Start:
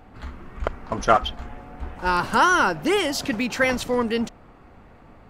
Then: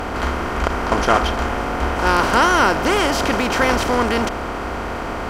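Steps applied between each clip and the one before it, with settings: spectral levelling over time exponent 0.4; peaking EQ 63 Hz +8 dB 1.1 oct; loudness maximiser -0.5 dB; trim -1 dB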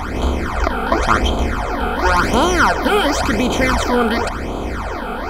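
band-stop 2.8 kHz, Q 7.3; phase shifter stages 12, 0.93 Hz, lowest notch 100–1800 Hz; trim +4.5 dB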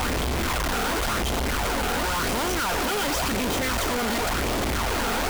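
one-bit comparator; trim -8 dB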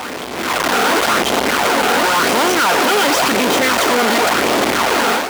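level rider gain up to 11 dB; high-pass 260 Hz 12 dB/octave; treble shelf 6.2 kHz -5.5 dB; trim +1.5 dB

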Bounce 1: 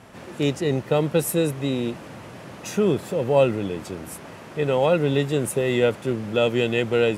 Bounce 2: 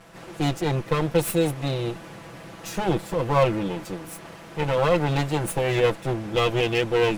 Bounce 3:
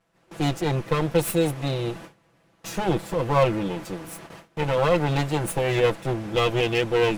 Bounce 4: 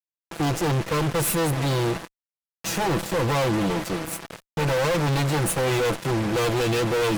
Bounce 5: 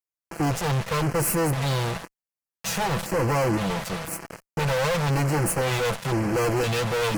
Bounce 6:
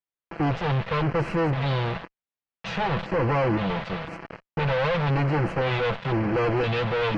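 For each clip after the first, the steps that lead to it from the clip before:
comb filter that takes the minimum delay 6 ms
gate with hold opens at -29 dBFS
fuzz box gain 34 dB, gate -40 dBFS; trim -7.5 dB
LFO notch square 0.98 Hz 320–3600 Hz
low-pass 3.6 kHz 24 dB/octave

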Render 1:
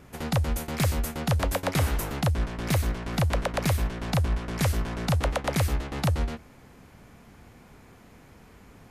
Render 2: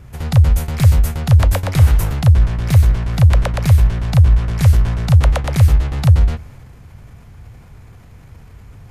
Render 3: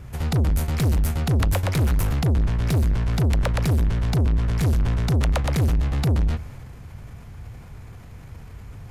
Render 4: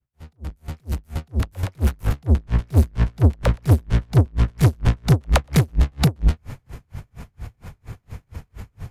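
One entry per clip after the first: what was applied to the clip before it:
resonant low shelf 160 Hz +11.5 dB, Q 1.5; transient shaper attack 0 dB, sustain +4 dB; trim +2.5 dB
saturation -17 dBFS, distortion -6 dB
fade-in on the opening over 2.71 s; logarithmic tremolo 4.3 Hz, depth 38 dB; trim +8.5 dB

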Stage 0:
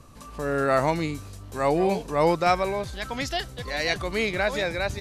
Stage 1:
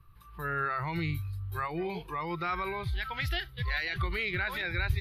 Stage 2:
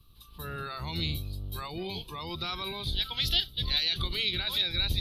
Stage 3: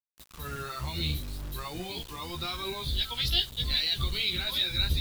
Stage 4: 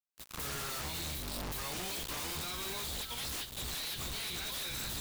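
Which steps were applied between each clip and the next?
peak limiter -19.5 dBFS, peak gain reduction 10.5 dB; FFT filter 110 Hz 0 dB, 160 Hz -6 dB, 250 Hz -25 dB, 350 Hz -10 dB, 590 Hz -23 dB, 1.2 kHz -3 dB, 3.9 kHz -9 dB, 7 kHz -29 dB, 13 kHz 0 dB; spectral noise reduction 13 dB; trim +6.5 dB
octave divider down 1 oct, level 0 dB; resonant high shelf 2.6 kHz +11.5 dB, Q 3; trim -3.5 dB
chorus voices 4, 0.7 Hz, delay 15 ms, depth 2.3 ms; word length cut 8-bit, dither none; trim +3 dB
spectral contrast reduction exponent 0.67; recorder AGC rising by 36 dB/s; wavefolder -28 dBFS; trim -6 dB

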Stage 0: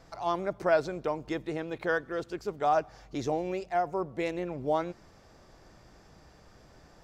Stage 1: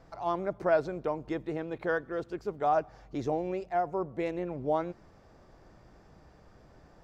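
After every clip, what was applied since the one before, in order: treble shelf 2.5 kHz -10.5 dB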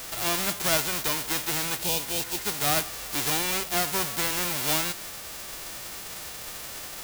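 formants flattened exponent 0.1; power-law waveshaper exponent 0.5; spectral replace 1.84–2.40 s, 1–2.3 kHz; trim -6 dB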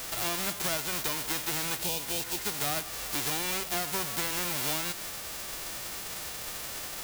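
compression 5:1, threshold -29 dBFS, peak gain reduction 8.5 dB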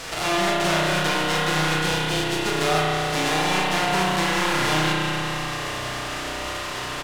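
distance through air 67 m; doubling 39 ms -7 dB; spring tank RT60 3.4 s, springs 32 ms, chirp 60 ms, DRR -5.5 dB; trim +7 dB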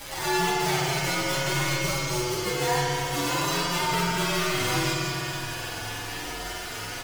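frequency axis rescaled in octaves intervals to 123%

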